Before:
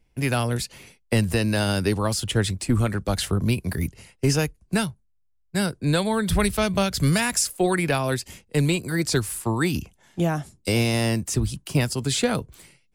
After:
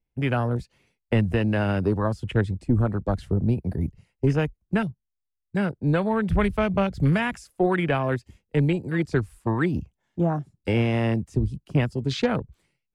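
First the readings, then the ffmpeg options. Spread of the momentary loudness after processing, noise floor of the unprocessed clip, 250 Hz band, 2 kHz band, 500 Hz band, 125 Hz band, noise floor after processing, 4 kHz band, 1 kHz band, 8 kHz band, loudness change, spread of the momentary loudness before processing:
6 LU, -65 dBFS, 0.0 dB, -2.5 dB, 0.0 dB, 0.0 dB, -82 dBFS, -10.5 dB, -0.5 dB, under -20 dB, -1.0 dB, 6 LU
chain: -af "aemphasis=mode=reproduction:type=50kf,afwtdn=0.0251"

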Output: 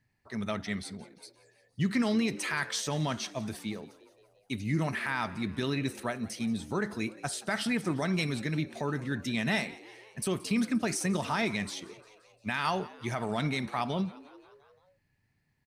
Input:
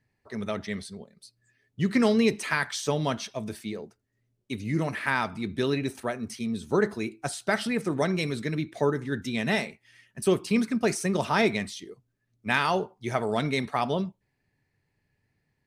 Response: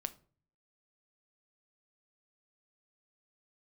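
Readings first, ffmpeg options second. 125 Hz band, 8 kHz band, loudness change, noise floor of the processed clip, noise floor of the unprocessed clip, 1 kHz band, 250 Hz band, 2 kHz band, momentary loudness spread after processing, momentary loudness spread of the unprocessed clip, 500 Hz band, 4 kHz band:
-2.0 dB, -0.5 dB, -4.0 dB, -73 dBFS, -77 dBFS, -4.5 dB, -3.0 dB, -4.0 dB, 11 LU, 12 LU, -8.0 dB, -2.0 dB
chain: -filter_complex "[0:a]alimiter=limit=-18dB:level=0:latency=1:release=79,equalizer=f=450:t=o:w=0.84:g=-7,asplit=2[a][b];[b]asplit=5[c][d][e][f][g];[c]adelay=175,afreqshift=73,volume=-20.5dB[h];[d]adelay=350,afreqshift=146,volume=-24.5dB[i];[e]adelay=525,afreqshift=219,volume=-28.5dB[j];[f]adelay=700,afreqshift=292,volume=-32.5dB[k];[g]adelay=875,afreqshift=365,volume=-36.6dB[l];[h][i][j][k][l]amix=inputs=5:normalize=0[m];[a][m]amix=inputs=2:normalize=0"

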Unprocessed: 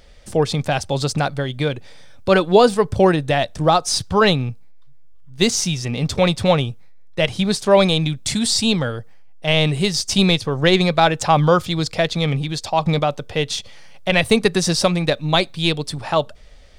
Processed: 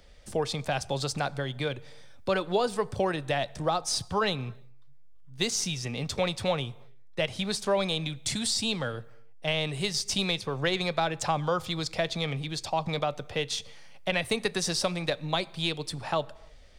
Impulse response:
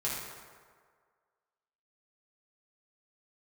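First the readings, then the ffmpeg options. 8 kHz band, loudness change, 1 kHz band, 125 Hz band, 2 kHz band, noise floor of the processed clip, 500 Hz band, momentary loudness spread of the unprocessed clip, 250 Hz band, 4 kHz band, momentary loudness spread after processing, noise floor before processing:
-8.0 dB, -11.5 dB, -11.0 dB, -13.5 dB, -10.0 dB, -48 dBFS, -12.0 dB, 9 LU, -14.0 dB, -9.5 dB, 6 LU, -39 dBFS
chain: -filter_complex "[0:a]acrossover=split=95|460[a][b][c];[a]acompressor=threshold=-38dB:ratio=4[d];[b]acompressor=threshold=-27dB:ratio=4[e];[c]acompressor=threshold=-18dB:ratio=4[f];[d][e][f]amix=inputs=3:normalize=0,asplit=2[g][h];[1:a]atrim=start_sample=2205,afade=t=out:st=0.37:d=0.01,atrim=end_sample=16758,adelay=15[i];[h][i]afir=irnorm=-1:irlink=0,volume=-25.5dB[j];[g][j]amix=inputs=2:normalize=0,volume=-7dB"

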